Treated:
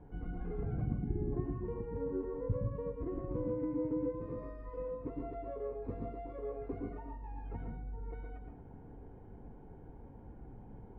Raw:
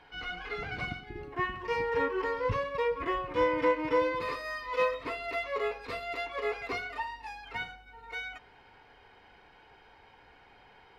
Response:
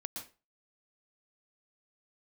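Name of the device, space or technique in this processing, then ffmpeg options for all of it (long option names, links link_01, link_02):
television next door: -filter_complex "[0:a]acompressor=threshold=-42dB:ratio=5,lowpass=250[link_01];[1:a]atrim=start_sample=2205[link_02];[link_01][link_02]afir=irnorm=-1:irlink=0,volume=17.5dB"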